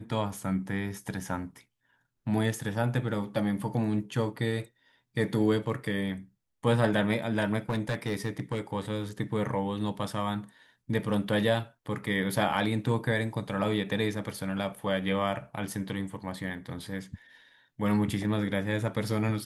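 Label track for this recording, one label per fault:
7.690000	8.590000	clipped -24 dBFS

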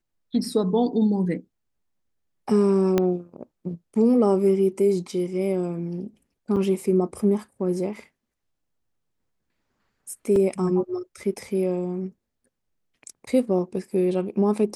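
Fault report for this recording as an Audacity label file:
2.980000	2.980000	pop -8 dBFS
6.560000	6.570000	dropout 5.3 ms
10.360000	10.360000	dropout 2.4 ms

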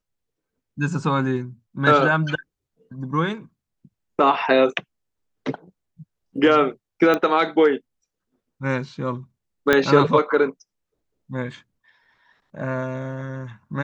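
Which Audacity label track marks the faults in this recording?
7.140000	7.140000	pop -9 dBFS
9.730000	9.730000	pop -4 dBFS

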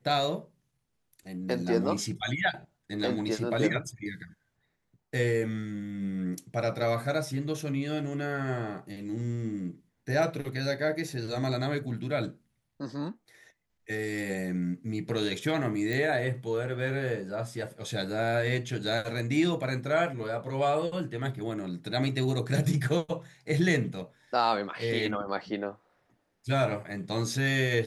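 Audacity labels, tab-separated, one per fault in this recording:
15.930000	15.930000	pop

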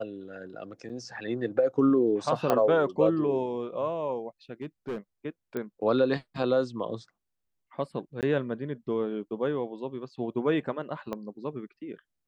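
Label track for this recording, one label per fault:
0.890000	0.900000	dropout 6.5 ms
2.500000	2.500000	pop -12 dBFS
4.620000	4.980000	clipped -29.5 dBFS
5.570000	5.570000	pop -21 dBFS
8.210000	8.230000	dropout 18 ms
11.130000	11.130000	pop -21 dBFS

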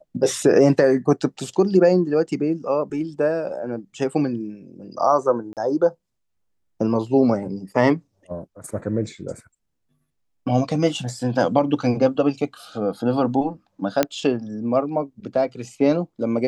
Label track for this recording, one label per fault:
5.530000	5.570000	dropout 38 ms
14.030000	14.030000	pop -4 dBFS

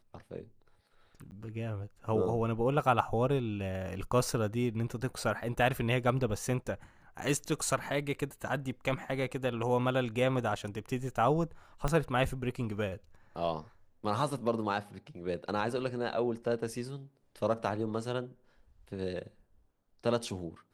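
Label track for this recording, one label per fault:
1.310000	1.320000	dropout 9.8 ms
11.880000	11.880000	pop -18 dBFS

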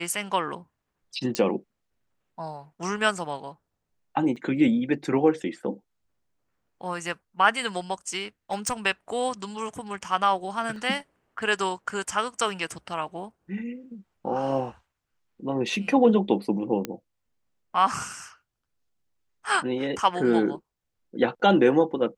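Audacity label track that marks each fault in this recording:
1.350000	1.350000	pop -11 dBFS
4.360000	4.370000	dropout 6.2 ms
8.510000	8.730000	clipped -21 dBFS
10.760000	10.760000	dropout 2 ms
16.850000	16.850000	pop -14 dBFS

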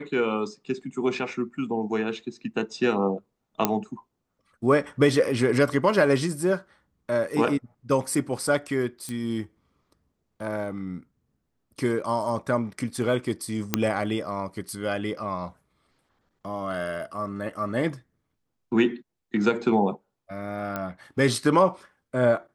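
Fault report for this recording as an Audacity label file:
3.650000	3.650000	pop -5 dBFS
9.090000	9.090000	pop -20 dBFS
13.740000	13.740000	pop -5 dBFS
20.760000	20.760000	pop -16 dBFS

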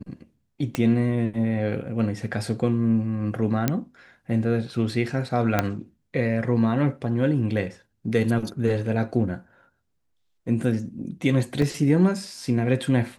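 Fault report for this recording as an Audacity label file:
0.750000	0.750000	pop -11 dBFS
3.680000	3.680000	pop -7 dBFS
5.590000	5.590000	pop -6 dBFS
11.620000	11.620000	dropout 3 ms

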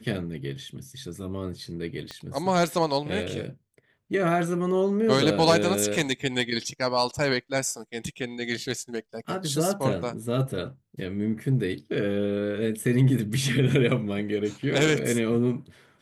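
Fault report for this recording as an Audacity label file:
2.110000	2.110000	pop -22 dBFS

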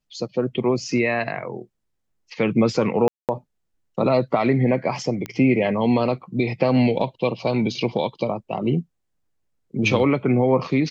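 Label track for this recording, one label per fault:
3.080000	3.290000	dropout 208 ms
5.260000	5.260000	pop -15 dBFS

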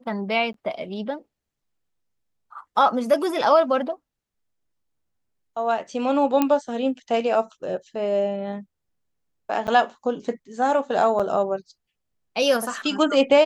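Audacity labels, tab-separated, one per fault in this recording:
0.530000	0.540000	dropout 13 ms
6.420000	6.420000	pop -7 dBFS
9.670000	9.680000	dropout 8.8 ms
11.190000	11.200000	dropout 6.6 ms

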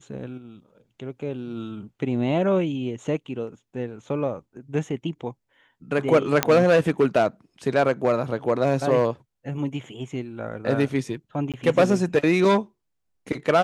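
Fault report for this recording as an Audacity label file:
6.430000	6.430000	pop -2 dBFS
11.520000	11.540000	dropout 17 ms

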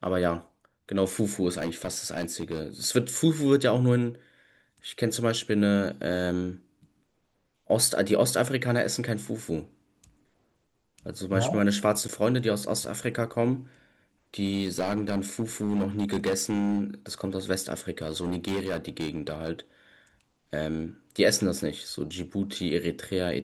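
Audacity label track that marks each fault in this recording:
1.500000	2.610000	clipped -24.5 dBFS
12.080000	12.090000	dropout 8.6 ms
14.450000	16.810000	clipped -21.5 dBFS
18.020000	19.490000	clipped -24.5 dBFS

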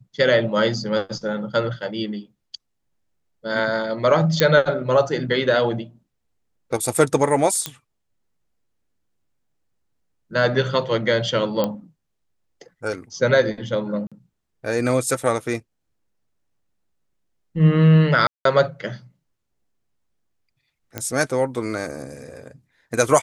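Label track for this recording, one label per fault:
4.400000	4.400000	pop -2 dBFS
7.660000	7.660000	pop -7 dBFS
11.640000	11.640000	pop -9 dBFS
14.070000	14.120000	dropout 46 ms
18.270000	18.450000	dropout 183 ms
20.980000	20.980000	pop -10 dBFS

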